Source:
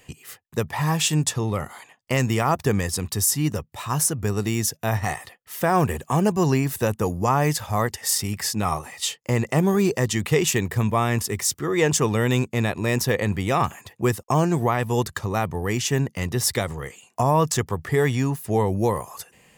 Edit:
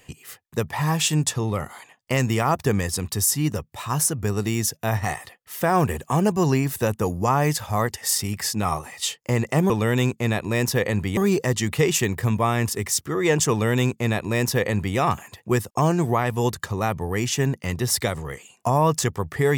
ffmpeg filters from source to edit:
-filter_complex "[0:a]asplit=3[a][b][c];[a]atrim=end=9.702[d];[b]atrim=start=12.028:end=13.502[e];[c]atrim=start=9.698[f];[d][e]acrossfade=d=0.004:c1=hsin:c2=hsin[g];[g][f]acrossfade=d=0.004:c1=hsin:c2=hsin"

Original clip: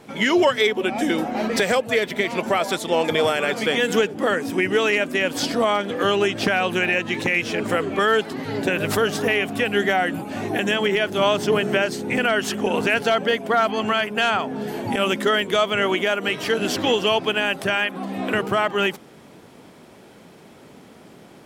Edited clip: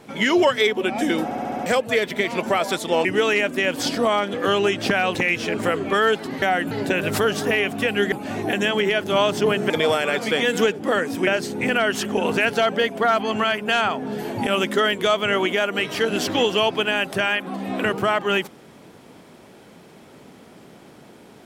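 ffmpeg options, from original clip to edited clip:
-filter_complex "[0:a]asplit=14[a][b][c][d][e][f][g][h][i][j][k][l][m][n];[a]atrim=end=1.312[o];[b]atrim=start=1.238:end=1.312[p];[c]atrim=start=1.238:end=1.312[q];[d]atrim=start=1.238:end=1.312[r];[e]atrim=start=1.238:end=1.312[s];[f]atrim=start=1.238:end=1.312[t];[g]atrim=start=1.658:end=3.052[u];[h]atrim=start=4.618:end=6.722[v];[i]atrim=start=7.208:end=8.482[w];[j]atrim=start=9.888:end=10.182[x];[k]atrim=start=8.478:end=9.892[y];[l]atrim=start=10.178:end=11.762[z];[m]atrim=start=3.048:end=4.622[aa];[n]atrim=start=11.758[ab];[o][p]acrossfade=d=0.004:c1=hsin:c2=hsin[ac];[ac][q]acrossfade=d=0.004:c1=hsin:c2=hsin[ad];[ad][r]acrossfade=d=0.004:c1=hsin:c2=hsin[ae];[ae][s]acrossfade=d=0.004:c1=hsin:c2=hsin[af];[af][t]acrossfade=d=0.004:c1=hsin:c2=hsin[ag];[ag][u]acrossfade=d=0.004:c1=hsin:c2=hsin[ah];[ah][v]acrossfade=d=0.004:c1=hsin:c2=hsin[ai];[ai][w]acrossfade=d=0.004:c1=hsin:c2=hsin[aj];[aj][x]acrossfade=d=0.004:c1=hsin:c2=hsin[ak];[ak][y]acrossfade=d=0.004:c1=hsin:c2=hsin[al];[al][z]acrossfade=d=0.004:c1=hsin:c2=hsin[am];[am][aa]acrossfade=d=0.004:c1=hsin:c2=hsin[an];[an][ab]acrossfade=d=0.004:c1=hsin:c2=hsin"

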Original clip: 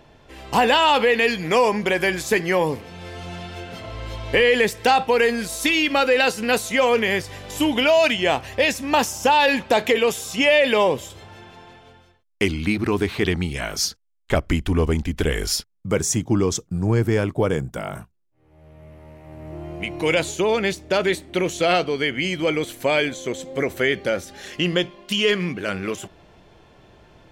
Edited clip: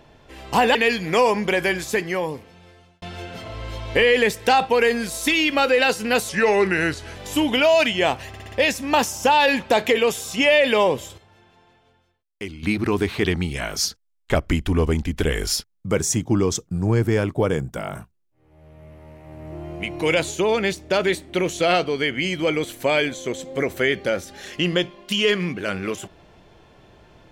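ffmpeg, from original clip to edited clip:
-filter_complex "[0:a]asplit=11[a][b][c][d][e][f][g][h][i][j][k];[a]atrim=end=0.752[l];[b]atrim=start=1.128:end=3.4,asetpts=PTS-STARTPTS,afade=t=out:st=0.832:d=1.44[m];[c]atrim=start=3.4:end=6.674,asetpts=PTS-STARTPTS,afade=t=in:d=0.004:c=hsin[n];[d]atrim=start=6.67:end=7.4,asetpts=PTS-STARTPTS,asetrate=37044,aresample=44100[o];[e]atrim=start=7.396:end=8.582[p];[f]atrim=start=8.518:end=8.582[q];[g]atrim=start=8.518:end=8.582[r];[h]atrim=start=8.518:end=8.582[s];[i]atrim=start=8.518:end=11.18,asetpts=PTS-STARTPTS,afade=t=out:st=2.492:d=0.17:c=log:silence=0.266073[t];[j]atrim=start=11.18:end=12.63,asetpts=PTS-STARTPTS,volume=-11.5dB[u];[k]atrim=start=12.63,asetpts=PTS-STARTPTS,afade=t=in:d=0.17:c=log:silence=0.266073[v];[m][n]concat=n=2:v=0:a=1[w];[l][w]acrossfade=d=0.004:c1=hsin:c2=hsin[x];[x][o]acrossfade=d=0.004:c1=hsin:c2=hsin[y];[y][p]acrossfade=d=0.004:c1=hsin:c2=hsin[z];[z][q]acrossfade=d=0.004:c1=hsin:c2=hsin[aa];[aa][r]acrossfade=d=0.004:c1=hsin:c2=hsin[ab];[ab][s]acrossfade=d=0.004:c1=hsin:c2=hsin[ac];[t][u][v]concat=n=3:v=0:a=1[ad];[ac][ad]acrossfade=d=0.004:c1=hsin:c2=hsin"

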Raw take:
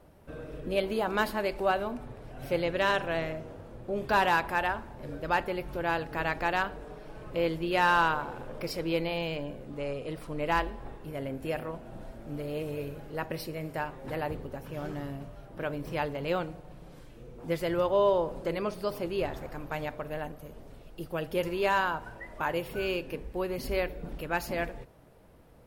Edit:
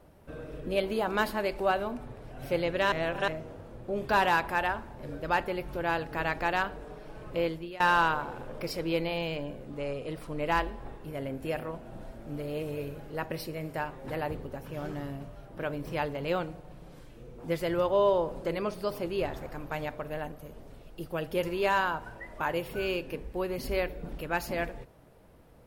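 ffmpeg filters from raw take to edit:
-filter_complex "[0:a]asplit=4[a][b][c][d];[a]atrim=end=2.922[e];[b]atrim=start=2.918:end=3.282,asetpts=PTS-STARTPTS,areverse[f];[c]atrim=start=3.278:end=7.8,asetpts=PTS-STARTPTS,afade=t=out:st=4.112:d=0.41:silence=0.0749894[g];[d]atrim=start=7.8,asetpts=PTS-STARTPTS,afade=t=in:d=0.004:c=hsin:silence=0.0749894[h];[e][f]acrossfade=d=0.004:c1=hsin:c2=hsin[i];[g][h]concat=n=2:v=0:a=1[j];[i][j]acrossfade=d=0.004:c1=hsin:c2=hsin"

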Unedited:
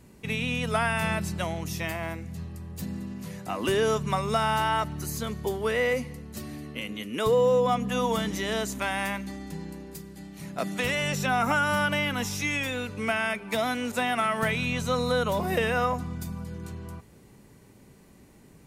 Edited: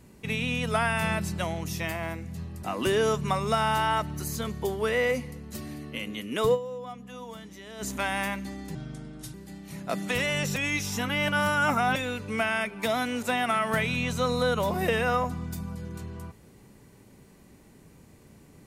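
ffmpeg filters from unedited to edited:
-filter_complex "[0:a]asplit=8[a][b][c][d][e][f][g][h];[a]atrim=end=2.632[i];[b]atrim=start=3.448:end=7.56,asetpts=PTS-STARTPTS,afade=t=out:st=3.912:d=0.2:c=exp:silence=0.177828[j];[c]atrim=start=7.56:end=8.45,asetpts=PTS-STARTPTS,volume=-15dB[k];[d]atrim=start=8.45:end=9.574,asetpts=PTS-STARTPTS,afade=t=in:d=0.2:c=exp:silence=0.177828[l];[e]atrim=start=9.57:end=10.03,asetpts=PTS-STARTPTS,asetrate=34398,aresample=44100[m];[f]atrim=start=10.026:end=11.252[n];[g]atrim=start=11.248:end=12.652,asetpts=PTS-STARTPTS,areverse[o];[h]atrim=start=12.648[p];[j][k][l]concat=n=3:v=0:a=1[q];[i][q]acrossfade=d=0.004:c1=hsin:c2=hsin[r];[r][m]acrossfade=d=0.004:c1=hsin:c2=hsin[s];[s][n]acrossfade=d=0.004:c1=hsin:c2=hsin[t];[t][o]acrossfade=d=0.004:c1=hsin:c2=hsin[u];[u][p]acrossfade=d=0.004:c1=hsin:c2=hsin"

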